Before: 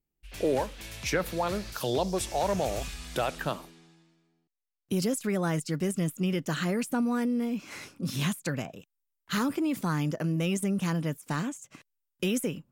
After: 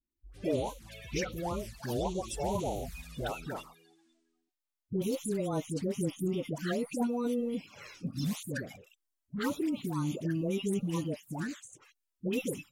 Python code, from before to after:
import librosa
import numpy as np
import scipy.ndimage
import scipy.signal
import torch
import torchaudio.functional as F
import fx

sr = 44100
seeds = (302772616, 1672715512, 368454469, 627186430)

y = fx.spec_quant(x, sr, step_db=30)
y = fx.env_flanger(y, sr, rest_ms=3.3, full_db=-25.5)
y = fx.dispersion(y, sr, late='highs', ms=107.0, hz=770.0)
y = F.gain(torch.from_numpy(y), -2.5).numpy()